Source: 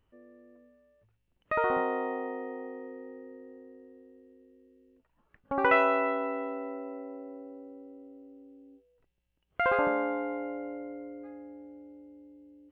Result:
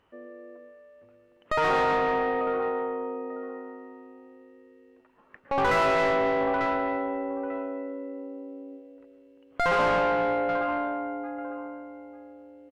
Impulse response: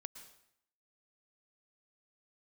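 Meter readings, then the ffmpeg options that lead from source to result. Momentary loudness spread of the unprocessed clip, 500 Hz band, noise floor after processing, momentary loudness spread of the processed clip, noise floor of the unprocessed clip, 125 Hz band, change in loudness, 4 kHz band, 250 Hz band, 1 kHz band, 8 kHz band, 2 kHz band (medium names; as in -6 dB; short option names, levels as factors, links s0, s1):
22 LU, +5.5 dB, -60 dBFS, 21 LU, -75 dBFS, +13.0 dB, +3.5 dB, +11.0 dB, +4.0 dB, +6.0 dB, no reading, +3.5 dB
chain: -filter_complex "[0:a]asplit=2[s0][s1];[s1]adelay=894,lowpass=f=3200:p=1,volume=0.158,asplit=2[s2][s3];[s3]adelay=894,lowpass=f=3200:p=1,volume=0.18[s4];[s0][s2][s4]amix=inputs=3:normalize=0[s5];[1:a]atrim=start_sample=2205,afade=t=out:st=0.32:d=0.01,atrim=end_sample=14553[s6];[s5][s6]afir=irnorm=-1:irlink=0,asplit=2[s7][s8];[s8]highpass=f=720:p=1,volume=25.1,asoftclip=type=tanh:threshold=0.188[s9];[s7][s9]amix=inputs=2:normalize=0,lowpass=f=1500:p=1,volume=0.501"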